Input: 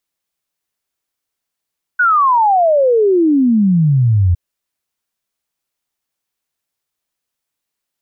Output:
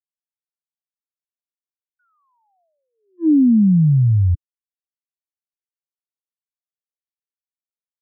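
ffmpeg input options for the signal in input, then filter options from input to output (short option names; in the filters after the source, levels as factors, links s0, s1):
-f lavfi -i "aevalsrc='0.376*clip(min(t,2.36-t)/0.01,0,1)*sin(2*PI*1500*2.36/log(84/1500)*(exp(log(84/1500)*t/2.36)-1))':d=2.36:s=44100"
-af "firequalizer=gain_entry='entry(310,0);entry(490,-29);entry(710,-17)':delay=0.05:min_phase=1,agate=range=0.0126:threshold=0.178:ratio=16:detection=peak,highpass=f=90:p=1"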